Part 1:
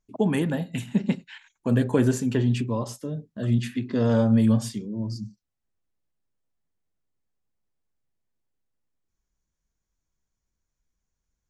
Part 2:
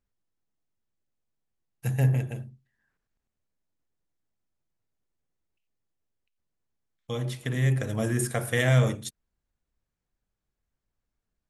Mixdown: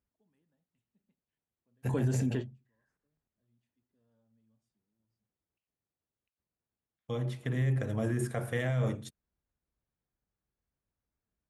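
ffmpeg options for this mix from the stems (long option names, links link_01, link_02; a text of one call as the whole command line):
ffmpeg -i stem1.wav -i stem2.wav -filter_complex "[0:a]volume=-5.5dB[link_01];[1:a]highpass=48,highshelf=frequency=2900:gain=-11.5,volume=-2.5dB,asplit=2[link_02][link_03];[link_03]apad=whole_len=506887[link_04];[link_01][link_04]sidechaingate=range=-48dB:threshold=-37dB:ratio=16:detection=peak[link_05];[link_05][link_02]amix=inputs=2:normalize=0,alimiter=limit=-22dB:level=0:latency=1:release=43" out.wav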